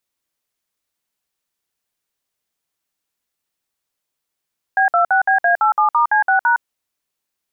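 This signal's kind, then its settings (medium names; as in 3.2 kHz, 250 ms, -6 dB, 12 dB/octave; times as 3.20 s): DTMF "B26BA87*C6#", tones 111 ms, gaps 57 ms, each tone -14 dBFS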